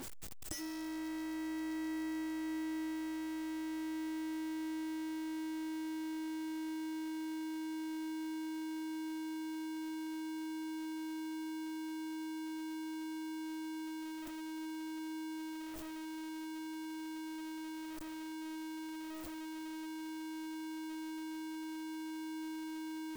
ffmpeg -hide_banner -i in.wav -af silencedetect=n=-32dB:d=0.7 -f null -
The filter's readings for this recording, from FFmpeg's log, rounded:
silence_start: 0.52
silence_end: 23.16 | silence_duration: 22.64